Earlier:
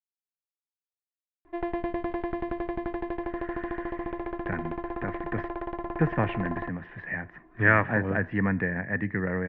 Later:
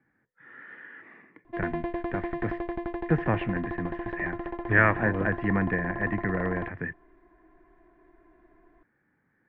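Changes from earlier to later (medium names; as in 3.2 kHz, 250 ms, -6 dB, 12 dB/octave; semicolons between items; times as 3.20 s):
speech: entry -2.90 s; background: send -9.5 dB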